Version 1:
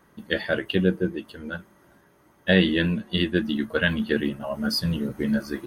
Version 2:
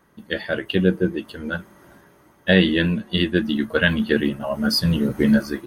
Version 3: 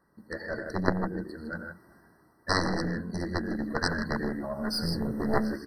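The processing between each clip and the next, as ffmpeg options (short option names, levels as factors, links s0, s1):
-af "dynaudnorm=f=480:g=3:m=3.98,volume=0.891"
-af "aecho=1:1:87.46|119.5|157.4:0.282|0.316|0.447,aeval=exprs='0.841*(cos(1*acos(clip(val(0)/0.841,-1,1)))-cos(1*PI/2))+0.237*(cos(2*acos(clip(val(0)/0.841,-1,1)))-cos(2*PI/2))+0.376*(cos(3*acos(clip(val(0)/0.841,-1,1)))-cos(3*PI/2))+0.00531*(cos(8*acos(clip(val(0)/0.841,-1,1)))-cos(8*PI/2))':c=same,afftfilt=real='re*eq(mod(floor(b*sr/1024/2000),2),0)':imag='im*eq(mod(floor(b*sr/1024/2000),2),0)':win_size=1024:overlap=0.75"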